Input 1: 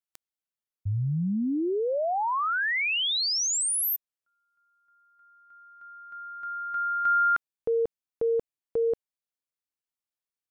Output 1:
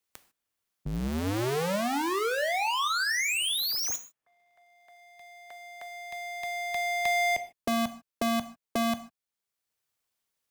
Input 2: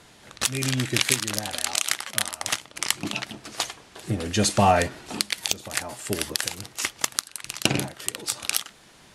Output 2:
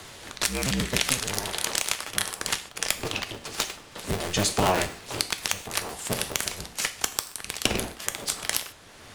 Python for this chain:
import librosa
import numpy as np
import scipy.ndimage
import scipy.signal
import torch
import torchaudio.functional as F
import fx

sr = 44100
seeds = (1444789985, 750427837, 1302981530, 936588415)

y = fx.cycle_switch(x, sr, every=2, mode='inverted')
y = fx.rev_gated(y, sr, seeds[0], gate_ms=170, shape='falling', drr_db=9.0)
y = fx.band_squash(y, sr, depth_pct=40)
y = F.gain(torch.from_numpy(y), -2.0).numpy()